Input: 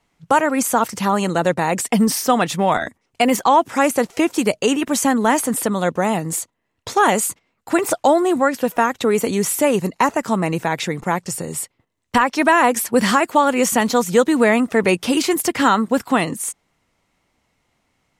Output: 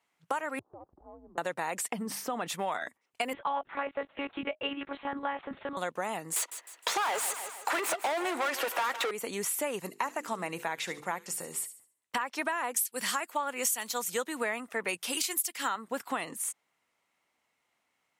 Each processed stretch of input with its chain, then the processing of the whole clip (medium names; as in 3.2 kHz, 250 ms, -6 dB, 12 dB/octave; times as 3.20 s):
0.59–1.38 s: Gaussian low-pass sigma 12 samples + compression 2.5:1, threshold -35 dBFS + frequency shift -140 Hz
1.92–2.48 s: tilt EQ -2.5 dB/octave + hum notches 50/100/150/200 Hz + compression 5:1, threshold -14 dBFS
3.33–5.77 s: distance through air 150 m + monotone LPC vocoder at 8 kHz 280 Hz
6.36–9.11 s: high-pass 310 Hz 24 dB/octave + overdrive pedal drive 31 dB, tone 3.5 kHz, clips at -3 dBFS + feedback delay 155 ms, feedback 43%, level -15 dB
9.80–12.18 s: hum notches 50/100/150/200/250/300/350/400/450/500 Hz + feedback echo behind a high-pass 71 ms, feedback 33%, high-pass 3.5 kHz, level -10.5 dB
12.76–15.76 s: treble shelf 2.8 kHz +12 dB + three bands expanded up and down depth 100%
whole clip: high-pass 1 kHz 6 dB/octave; peaking EQ 5.3 kHz -5 dB 1.4 oct; compression, threshold -23 dBFS; trim -5.5 dB